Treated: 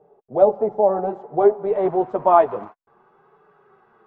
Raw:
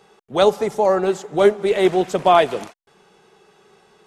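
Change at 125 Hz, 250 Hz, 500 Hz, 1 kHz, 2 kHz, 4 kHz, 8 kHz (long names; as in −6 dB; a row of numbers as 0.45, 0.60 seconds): −5.5 dB, −4.0 dB, −1.0 dB, −0.5 dB, −12.5 dB, below −25 dB, below −40 dB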